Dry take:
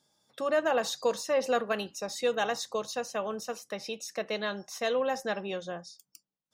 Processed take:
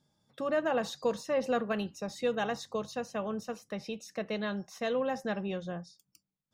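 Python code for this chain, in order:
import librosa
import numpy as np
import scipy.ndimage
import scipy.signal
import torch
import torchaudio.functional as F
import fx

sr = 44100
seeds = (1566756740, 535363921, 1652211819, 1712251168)

y = fx.bass_treble(x, sr, bass_db=13, treble_db=-6)
y = y * librosa.db_to_amplitude(-3.5)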